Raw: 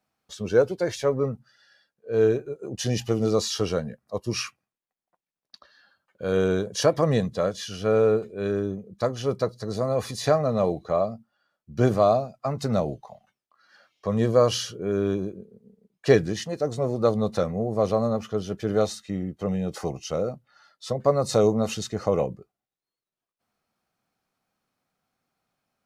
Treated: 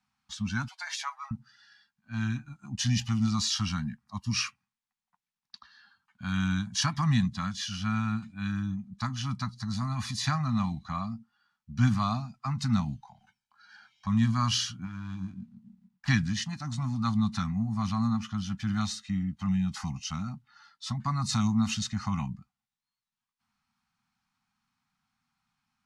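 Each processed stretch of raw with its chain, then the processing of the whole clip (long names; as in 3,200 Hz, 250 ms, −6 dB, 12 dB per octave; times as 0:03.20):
0:00.68–0:01.31: Butterworth high-pass 560 Hz 72 dB per octave + comb filter 6.2 ms, depth 37%
0:13.02–0:14.07: comb filter 1.3 ms, depth 94% + downward compressor 2 to 1, threshold −50 dBFS
0:14.84–0:16.08: running median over 15 samples + downward compressor, threshold −28 dBFS + double-tracking delay 22 ms −8.5 dB
whole clip: Chebyshev band-stop filter 240–860 Hz, order 3; dynamic equaliser 690 Hz, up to −6 dB, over −47 dBFS, Q 1.2; low-pass filter 7,400 Hz 12 dB per octave; level +1.5 dB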